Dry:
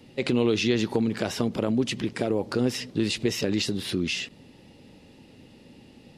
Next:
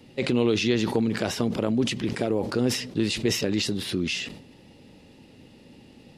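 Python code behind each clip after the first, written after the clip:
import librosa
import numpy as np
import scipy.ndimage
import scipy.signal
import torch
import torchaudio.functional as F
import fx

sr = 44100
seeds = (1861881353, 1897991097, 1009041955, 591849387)

y = fx.sustainer(x, sr, db_per_s=81.0)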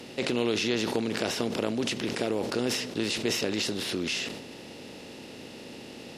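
y = fx.bin_compress(x, sr, power=0.6)
y = fx.low_shelf(y, sr, hz=200.0, db=-9.5)
y = y * 10.0 ** (-4.5 / 20.0)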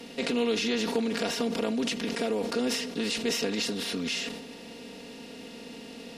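y = x + 0.91 * np.pad(x, (int(4.3 * sr / 1000.0), 0))[:len(x)]
y = y * 10.0 ** (-3.0 / 20.0)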